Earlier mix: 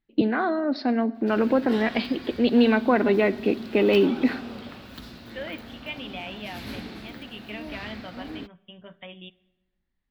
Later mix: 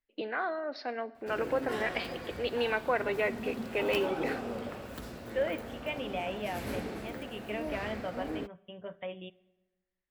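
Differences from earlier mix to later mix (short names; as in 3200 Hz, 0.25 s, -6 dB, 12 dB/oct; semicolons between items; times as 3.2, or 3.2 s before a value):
first voice: add band-pass 3700 Hz, Q 0.67; master: add graphic EQ 250/500/4000/8000 Hz -4/+8/-11/+7 dB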